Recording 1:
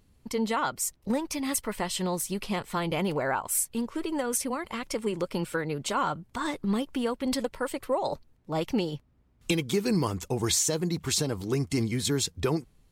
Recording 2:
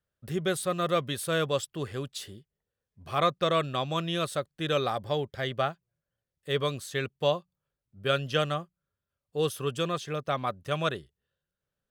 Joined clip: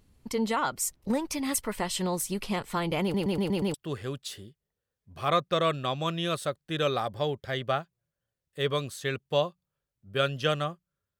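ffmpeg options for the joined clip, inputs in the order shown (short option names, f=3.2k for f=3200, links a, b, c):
-filter_complex "[0:a]apad=whole_dur=11.19,atrim=end=11.19,asplit=6[a][b][c][d][e][f];[a]atrim=end=3.142[g];[b]atrim=start=3.018:end=3.142[h];[c]atrim=start=3.018:end=3.142[i];[d]atrim=start=3.018:end=3.142[j];[e]atrim=start=3.018:end=3.142[k];[f]atrim=start=3.018:end=3.142[l];[1:a]atrim=start=1.638:end=9.09[m];[g][h]acrossfade=d=0.004:c1=hsin:c2=hsin[n];[n][i]acrossfade=d=0.004:c1=hsin:c2=hsin[o];[o][j]acrossfade=d=0.004:c1=hsin:c2=hsin[p];[p][k]acrossfade=d=0.004:c1=hsin:c2=hsin[q];[q][l]acrossfade=d=0.004:c1=hsin:c2=hsin[r];[r][m]acrossfade=d=0.004:c1=hsin:c2=hsin"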